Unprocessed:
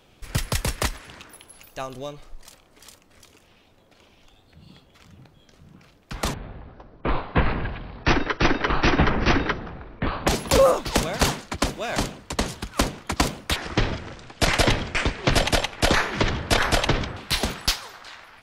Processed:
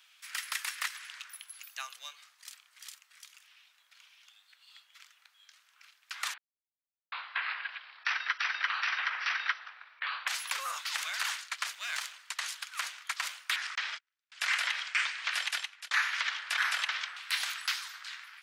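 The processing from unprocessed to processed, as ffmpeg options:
-filter_complex "[0:a]asettb=1/sr,asplit=3[s0][s1][s2];[s0]atrim=end=11.734[s3];[s1]atrim=start=11.73:end=12.14,asetpts=PTS-STARTPTS,afade=t=in:d=0.004:c=qsin,afade=t=out:st=0.406:d=0.004:c=qsin,aeval=exprs='if(lt(val(0),0),0.447*val(0),val(0))':c=same[s4];[s2]atrim=start=12.136[s5];[s3][s4]acrossfade=d=0.004:c1=hsin:c2=qsin[s6];[s6][s5]acrossfade=d=0.004:c1=qsin:c2=hsin,asettb=1/sr,asplit=3[s7][s8][s9];[s7]atrim=end=13.754[s10];[s8]atrim=start=13.75:end=14.32,asetpts=PTS-STARTPTS,afade=t=in:d=0.004:c=qsin,afade=t=out:st=0.566:d=0.004:c=qsin,agate=range=0.00631:threshold=0.0282:ratio=16:release=100:detection=peak[s11];[s9]atrim=start=14.316[s12];[s10][s11]acrossfade=d=0.004:c1=hsin:c2=qsin[s13];[s13][s12]acrossfade=d=0.004:c1=qsin:c2=hsin,asplit=4[s14][s15][s16][s17];[s14]atrim=end=6.38,asetpts=PTS-STARTPTS,afade=t=out:st=6.376:d=0.004:c=hsin[s18];[s15]atrim=start=6.38:end=7.12,asetpts=PTS-STARTPTS,volume=0[s19];[s16]atrim=start=7.12:end=15.91,asetpts=PTS-STARTPTS,afade=t=in:d=0.004:c=hsin,afade=t=out:st=8.09:d=0.7[s20];[s17]atrim=start=15.91,asetpts=PTS-STARTPTS,afade=t=in:d=0.004:c=hsin[s21];[s18][s19][s20][s21]concat=n=4:v=0:a=1,acrossover=split=2600[s22][s23];[s23]acompressor=threshold=0.0251:ratio=4:attack=1:release=60[s24];[s22][s24]amix=inputs=2:normalize=0,alimiter=limit=0.2:level=0:latency=1:release=73,highpass=f=1400:w=0.5412,highpass=f=1400:w=1.3066"

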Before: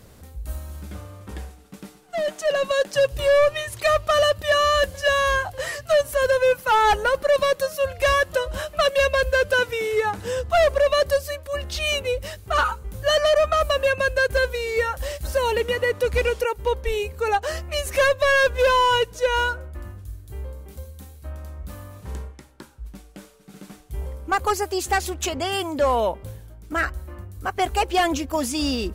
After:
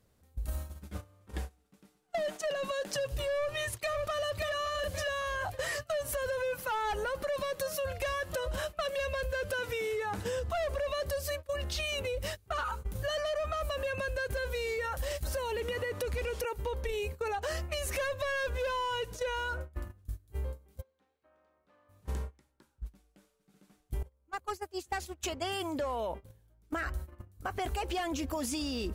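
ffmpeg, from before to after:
-filter_complex "[0:a]asplit=2[s0][s1];[s1]afade=t=in:st=3.36:d=0.01,afade=t=out:st=4.47:d=0.01,aecho=0:1:560|1120|1680:0.316228|0.0948683|0.0284605[s2];[s0][s2]amix=inputs=2:normalize=0,asplit=3[s3][s4][s5];[s3]afade=t=out:st=20.8:d=0.02[s6];[s4]highpass=390,lowpass=2600,afade=t=in:st=20.8:d=0.02,afade=t=out:st=21.88:d=0.02[s7];[s5]afade=t=in:st=21.88:d=0.02[s8];[s6][s7][s8]amix=inputs=3:normalize=0,asplit=2[s9][s10];[s9]atrim=end=24.03,asetpts=PTS-STARTPTS,afade=t=out:st=24.026:d=0.004:c=hsin:silence=0.112202[s11];[s10]atrim=start=24.03,asetpts=PTS-STARTPTS,afade=t=in:d=2.98:silence=0.112202[s12];[s11][s12]concat=n=2:v=0:a=1,agate=range=0.0891:threshold=0.0224:ratio=16:detection=peak,alimiter=limit=0.0708:level=0:latency=1:release=11,acompressor=threshold=0.0282:ratio=6"

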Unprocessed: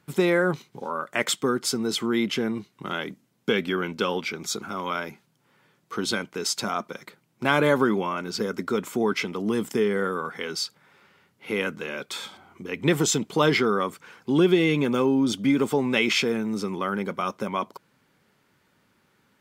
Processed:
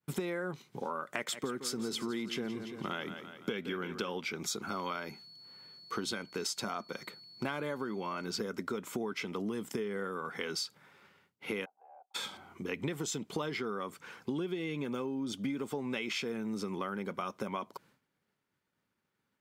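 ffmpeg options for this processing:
-filter_complex "[0:a]asettb=1/sr,asplit=3[s0][s1][s2];[s0]atrim=end=1.154[s3];[s1]atrim=start=1.15:end=4.13,asetpts=PTS-STARTPTS,afade=t=in:d=0.004:c=qsin,afade=t=out:st=2.976:d=0.004:c=qsin,aecho=1:1:170|340|510|680|850:0.211|0.108|0.055|0.028|0.0143,atrim=end_sample=131418[s4];[s2]atrim=start=4.126[s5];[s3][s4]acrossfade=d=0.004:c1=hsin:c2=qsin[s6];[s6][s5]acrossfade=d=0.004:c1=qsin:c2=hsin,asettb=1/sr,asplit=3[s7][s8][s9];[s7]atrim=end=4.674[s10];[s8]atrim=start=4.67:end=8.26,asetpts=PTS-STARTPTS,afade=t=in:d=0.004:c=qsin,afade=t=out:st=3.586:d=0.004:c=qsin,aeval=exprs='val(0)+0.00316*sin(2*PI*4400*n/s)':c=same[s11];[s9]atrim=start=8.256[s12];[s10][s11]acrossfade=d=0.004:c1=hsin:c2=qsin[s13];[s13][s12]acrossfade=d=0.004:c1=qsin:c2=hsin,asplit=3[s14][s15][s16];[s14]afade=t=out:st=11.64:d=0.02[s17];[s15]asuperpass=centerf=770:order=4:qfactor=6.9,afade=t=in:st=11.64:d=0.02,afade=t=out:st=12.14:d=0.02[s18];[s16]afade=t=in:st=12.14:d=0.02[s19];[s17][s18][s19]amix=inputs=3:normalize=0,agate=range=0.0224:threshold=0.002:ratio=3:detection=peak,acompressor=threshold=0.0282:ratio=12,volume=0.841"

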